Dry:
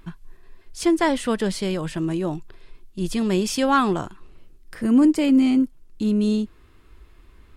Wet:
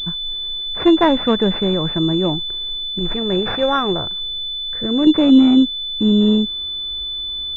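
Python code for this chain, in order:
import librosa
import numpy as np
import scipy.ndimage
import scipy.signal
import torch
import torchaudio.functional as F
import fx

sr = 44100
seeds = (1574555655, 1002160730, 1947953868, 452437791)

y = fx.graphic_eq_10(x, sr, hz=(250, 500, 1000), db=(-11, 3, -7), at=(2.99, 5.07))
y = fx.pwm(y, sr, carrier_hz=3500.0)
y = y * 10.0 ** (6.5 / 20.0)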